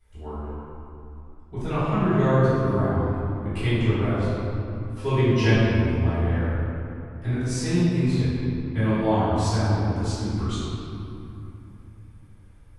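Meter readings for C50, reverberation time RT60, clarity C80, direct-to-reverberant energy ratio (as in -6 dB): -5.0 dB, 2.8 s, -2.5 dB, -16.0 dB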